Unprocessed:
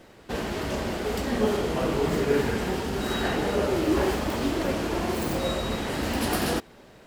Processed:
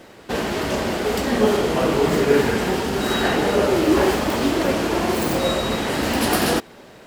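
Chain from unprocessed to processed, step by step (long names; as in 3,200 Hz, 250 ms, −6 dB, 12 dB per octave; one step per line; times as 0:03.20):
low-shelf EQ 96 Hz −9.5 dB
level +7.5 dB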